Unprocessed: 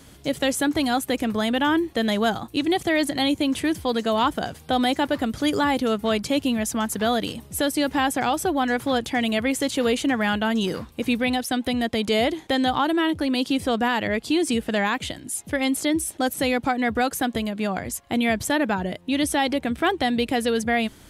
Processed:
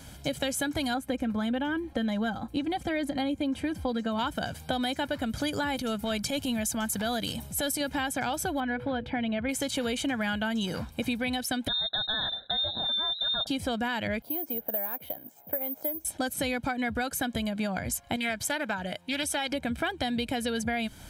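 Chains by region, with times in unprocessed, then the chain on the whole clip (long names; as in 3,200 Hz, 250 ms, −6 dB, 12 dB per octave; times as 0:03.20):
0:00.94–0:04.19: high-shelf EQ 2,400 Hz −12 dB + comb filter 3.8 ms, depth 49%
0:05.76–0:07.81: high-shelf EQ 5,400 Hz +6 dB + transient designer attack −10 dB, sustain +1 dB
0:08.60–0:09.49: high-frequency loss of the air 430 metres + notch filter 1,200 Hz, Q 16 + hum removal 98.35 Hz, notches 5
0:11.68–0:13.47: Chebyshev band-stop filter 490–2,100 Hz, order 5 + notch comb filter 1,000 Hz + voice inversion scrambler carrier 3,900 Hz
0:14.22–0:16.05: resonant band-pass 570 Hz, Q 1.7 + bad sample-rate conversion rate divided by 3×, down filtered, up zero stuff
0:18.16–0:19.52: high-pass filter 59 Hz + low-shelf EQ 450 Hz −10 dB + highs frequency-modulated by the lows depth 0.15 ms
whole clip: comb filter 1.3 ms, depth 54%; dynamic equaliser 790 Hz, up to −6 dB, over −35 dBFS, Q 2.9; downward compressor 5 to 1, threshold −27 dBFS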